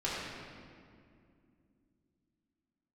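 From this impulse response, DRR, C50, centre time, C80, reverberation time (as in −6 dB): −9.0 dB, −2.0 dB, 126 ms, −0.5 dB, 2.4 s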